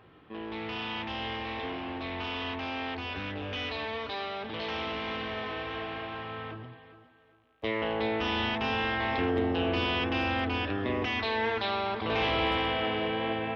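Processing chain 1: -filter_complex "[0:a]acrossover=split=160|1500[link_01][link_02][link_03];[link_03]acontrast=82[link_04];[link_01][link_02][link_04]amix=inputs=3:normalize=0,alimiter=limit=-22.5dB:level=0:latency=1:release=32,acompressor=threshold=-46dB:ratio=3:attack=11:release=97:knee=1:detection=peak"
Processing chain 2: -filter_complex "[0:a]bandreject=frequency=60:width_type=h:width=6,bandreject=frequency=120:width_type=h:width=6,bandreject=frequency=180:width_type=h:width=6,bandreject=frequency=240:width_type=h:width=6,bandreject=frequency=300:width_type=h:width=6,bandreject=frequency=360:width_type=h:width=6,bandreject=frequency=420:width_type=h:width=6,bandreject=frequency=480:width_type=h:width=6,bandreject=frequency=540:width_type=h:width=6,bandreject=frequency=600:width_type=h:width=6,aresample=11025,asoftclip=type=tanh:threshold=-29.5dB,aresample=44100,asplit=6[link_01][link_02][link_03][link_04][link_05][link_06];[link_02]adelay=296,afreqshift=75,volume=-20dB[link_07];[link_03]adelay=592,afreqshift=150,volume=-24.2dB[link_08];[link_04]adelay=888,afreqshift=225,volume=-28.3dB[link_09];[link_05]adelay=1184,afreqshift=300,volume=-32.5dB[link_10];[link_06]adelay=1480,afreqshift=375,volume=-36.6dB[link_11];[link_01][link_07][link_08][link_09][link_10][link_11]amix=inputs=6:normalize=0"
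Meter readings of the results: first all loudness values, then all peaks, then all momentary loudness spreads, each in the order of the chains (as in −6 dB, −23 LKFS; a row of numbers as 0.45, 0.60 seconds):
−42.0, −34.5 LKFS; −29.0, −26.0 dBFS; 4, 7 LU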